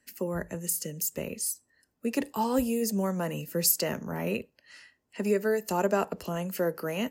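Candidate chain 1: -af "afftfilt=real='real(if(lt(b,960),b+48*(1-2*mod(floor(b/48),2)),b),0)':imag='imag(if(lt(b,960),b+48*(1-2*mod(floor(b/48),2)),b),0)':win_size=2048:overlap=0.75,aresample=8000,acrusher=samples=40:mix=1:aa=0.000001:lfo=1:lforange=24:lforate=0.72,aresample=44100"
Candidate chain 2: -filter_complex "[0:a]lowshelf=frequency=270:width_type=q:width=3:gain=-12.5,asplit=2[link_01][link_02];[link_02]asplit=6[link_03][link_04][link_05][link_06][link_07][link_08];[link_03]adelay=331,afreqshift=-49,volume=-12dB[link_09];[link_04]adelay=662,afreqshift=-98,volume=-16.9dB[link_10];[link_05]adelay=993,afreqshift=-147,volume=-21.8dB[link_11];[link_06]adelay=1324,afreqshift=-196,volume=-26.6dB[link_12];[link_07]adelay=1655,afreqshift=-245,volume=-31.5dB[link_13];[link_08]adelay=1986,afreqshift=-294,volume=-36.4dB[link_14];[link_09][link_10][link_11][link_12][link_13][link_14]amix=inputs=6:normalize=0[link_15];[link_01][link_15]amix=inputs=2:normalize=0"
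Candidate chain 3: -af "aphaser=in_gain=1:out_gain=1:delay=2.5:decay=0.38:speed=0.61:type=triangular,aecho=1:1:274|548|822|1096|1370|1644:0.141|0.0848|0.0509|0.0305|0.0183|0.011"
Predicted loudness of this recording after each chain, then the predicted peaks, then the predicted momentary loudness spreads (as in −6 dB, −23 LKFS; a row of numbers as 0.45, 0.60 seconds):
−34.5, −27.0, −29.5 LKFS; −13.0, −10.0, −10.5 dBFS; 12, 13, 12 LU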